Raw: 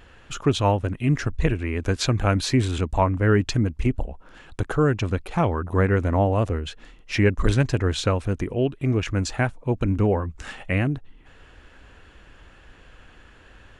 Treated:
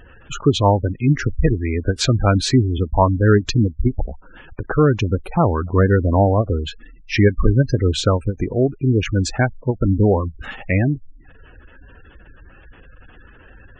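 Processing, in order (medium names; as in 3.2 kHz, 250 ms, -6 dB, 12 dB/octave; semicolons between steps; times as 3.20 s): spectral gate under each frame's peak -20 dB strong; endings held to a fixed fall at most 350 dB/s; trim +5.5 dB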